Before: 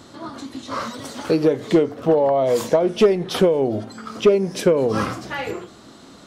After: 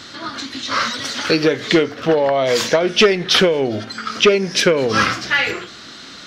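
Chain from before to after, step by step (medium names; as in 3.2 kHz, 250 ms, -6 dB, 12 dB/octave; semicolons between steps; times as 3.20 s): high-order bell 2.9 kHz +13.5 dB 2.5 oct; trim +1 dB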